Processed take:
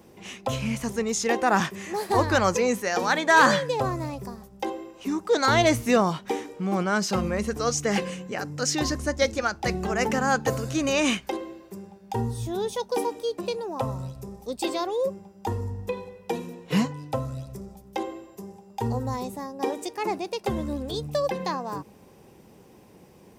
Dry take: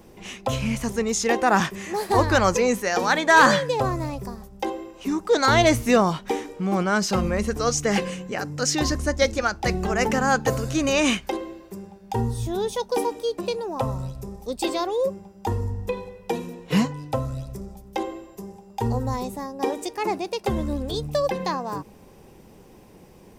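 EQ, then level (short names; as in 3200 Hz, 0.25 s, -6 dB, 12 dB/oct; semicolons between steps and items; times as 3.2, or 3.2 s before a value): HPF 74 Hz; -2.5 dB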